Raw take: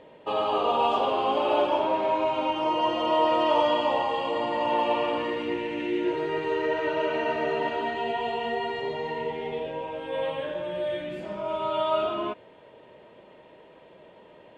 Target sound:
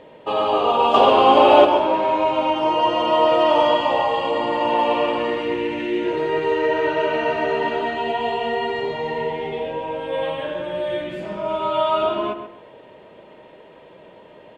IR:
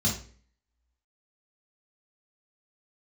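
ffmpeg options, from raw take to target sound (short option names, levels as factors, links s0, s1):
-filter_complex "[0:a]asettb=1/sr,asplit=3[s0][s1][s2];[s0]atrim=end=0.944[s3];[s1]atrim=start=0.94:end=1.65,asetpts=PTS-STARTPTS,afade=t=in:d=0.004:c=qsin,afade=t=out:st=0.706:d=0.004:c=qsin,acontrast=61[s4];[s2]atrim=start=1.646[s5];[s3][s4]acrossfade=d=0.004:c1=hsin:c2=qsin[s6];[s6][s5]acrossfade=d=0.004:c1=qsin:c2=hsin,asplit=2[s7][s8];[s8]adelay=132,lowpass=f=2200:p=1,volume=0.398,asplit=2[s9][s10];[s10]adelay=132,lowpass=f=2200:p=1,volume=0.29,asplit=2[s11][s12];[s12]adelay=132,lowpass=f=2200:p=1,volume=0.29[s13];[s9][s11][s13]amix=inputs=3:normalize=0[s14];[s7][s14]amix=inputs=2:normalize=0,volume=1.88"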